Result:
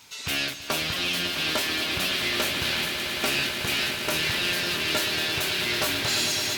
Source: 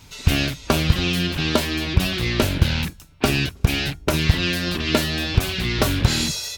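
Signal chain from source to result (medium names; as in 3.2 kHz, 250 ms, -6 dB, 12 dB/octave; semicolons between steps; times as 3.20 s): high-pass 900 Hz 6 dB/octave; saturation -20 dBFS, distortion -14 dB; echo with a slow build-up 110 ms, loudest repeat 8, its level -12.5 dB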